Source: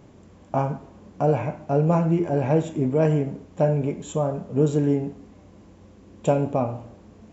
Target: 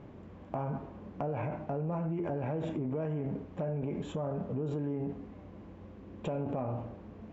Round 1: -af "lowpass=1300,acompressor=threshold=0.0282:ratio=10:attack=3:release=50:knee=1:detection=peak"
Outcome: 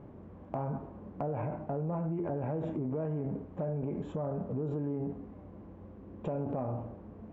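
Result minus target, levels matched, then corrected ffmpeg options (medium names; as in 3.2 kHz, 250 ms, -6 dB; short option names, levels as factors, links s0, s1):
2 kHz band -5.0 dB
-af "lowpass=2600,acompressor=threshold=0.0282:ratio=10:attack=3:release=50:knee=1:detection=peak"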